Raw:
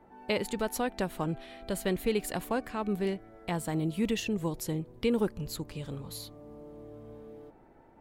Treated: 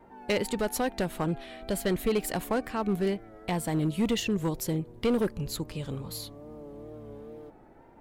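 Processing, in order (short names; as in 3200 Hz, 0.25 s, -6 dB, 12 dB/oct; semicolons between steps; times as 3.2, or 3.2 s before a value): hard clip -24 dBFS, distortion -15 dB; wow and flutter 55 cents; gain +3.5 dB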